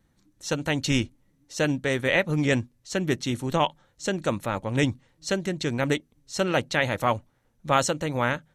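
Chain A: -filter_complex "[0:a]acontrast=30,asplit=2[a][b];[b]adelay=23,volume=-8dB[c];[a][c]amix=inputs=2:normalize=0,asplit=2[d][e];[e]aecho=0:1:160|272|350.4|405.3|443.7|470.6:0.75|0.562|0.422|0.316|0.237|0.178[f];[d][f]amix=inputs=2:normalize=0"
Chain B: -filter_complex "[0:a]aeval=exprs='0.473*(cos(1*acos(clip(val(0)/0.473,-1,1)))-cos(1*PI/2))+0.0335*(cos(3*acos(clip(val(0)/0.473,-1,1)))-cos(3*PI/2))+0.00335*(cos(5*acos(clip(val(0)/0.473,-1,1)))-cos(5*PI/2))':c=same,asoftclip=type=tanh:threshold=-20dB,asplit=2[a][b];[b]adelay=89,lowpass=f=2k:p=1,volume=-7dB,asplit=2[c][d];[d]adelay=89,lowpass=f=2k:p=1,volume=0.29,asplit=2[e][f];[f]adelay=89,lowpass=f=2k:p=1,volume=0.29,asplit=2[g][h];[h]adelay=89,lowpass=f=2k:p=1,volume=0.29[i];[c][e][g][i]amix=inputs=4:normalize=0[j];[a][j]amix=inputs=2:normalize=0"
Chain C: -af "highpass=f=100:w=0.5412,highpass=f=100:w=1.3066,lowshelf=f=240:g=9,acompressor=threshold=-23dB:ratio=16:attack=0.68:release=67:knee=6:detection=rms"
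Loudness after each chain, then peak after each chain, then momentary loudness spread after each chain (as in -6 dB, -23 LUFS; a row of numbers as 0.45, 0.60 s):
-18.0, -30.0, -32.0 LUFS; -1.5, -17.0, -19.5 dBFS; 6, 9, 8 LU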